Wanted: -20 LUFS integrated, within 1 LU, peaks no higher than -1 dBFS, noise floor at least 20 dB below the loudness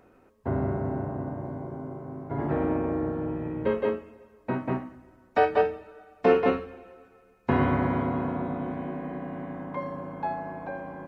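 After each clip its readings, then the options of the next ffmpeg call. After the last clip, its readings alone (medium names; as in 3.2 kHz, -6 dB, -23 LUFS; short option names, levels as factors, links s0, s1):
loudness -29.0 LUFS; peak level -8.5 dBFS; loudness target -20.0 LUFS
-> -af "volume=2.82,alimiter=limit=0.891:level=0:latency=1"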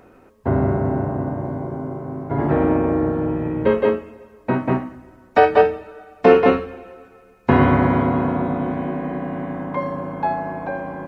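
loudness -20.5 LUFS; peak level -1.0 dBFS; noise floor -50 dBFS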